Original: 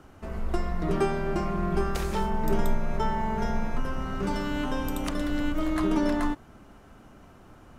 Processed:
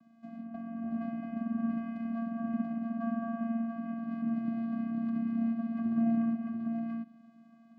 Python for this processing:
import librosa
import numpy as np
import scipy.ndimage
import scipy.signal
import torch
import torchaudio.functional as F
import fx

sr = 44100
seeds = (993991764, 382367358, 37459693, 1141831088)

y = fx.echo_multitap(x, sr, ms=(91, 217, 686), db=(-16.5, -8.0, -4.0))
y = fx.env_lowpass_down(y, sr, base_hz=1500.0, full_db=-23.0)
y = fx.vocoder(y, sr, bands=8, carrier='square', carrier_hz=229.0)
y = y * 10.0 ** (-5.0 / 20.0)